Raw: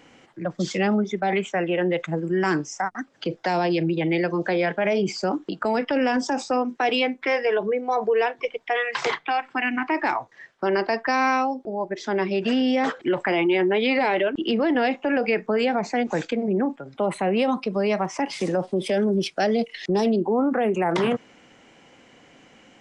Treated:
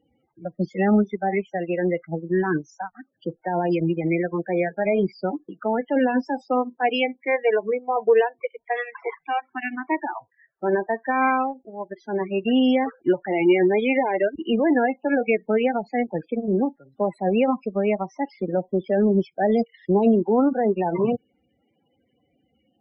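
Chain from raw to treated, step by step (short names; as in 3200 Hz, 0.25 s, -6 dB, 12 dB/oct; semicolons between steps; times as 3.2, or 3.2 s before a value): bell 65 Hz +13 dB 0.99 oct; loudest bins only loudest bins 16; upward expander 2.5:1, over -30 dBFS; gain +5.5 dB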